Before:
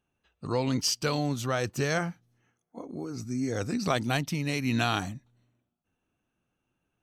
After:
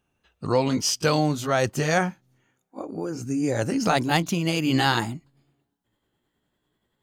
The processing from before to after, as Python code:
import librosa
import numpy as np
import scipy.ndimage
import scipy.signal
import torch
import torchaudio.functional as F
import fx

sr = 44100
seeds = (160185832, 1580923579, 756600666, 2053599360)

y = fx.pitch_glide(x, sr, semitones=3.5, runs='starting unshifted')
y = fx.dynamic_eq(y, sr, hz=690.0, q=0.89, threshold_db=-44.0, ratio=4.0, max_db=3)
y = y * 10.0 ** (6.0 / 20.0)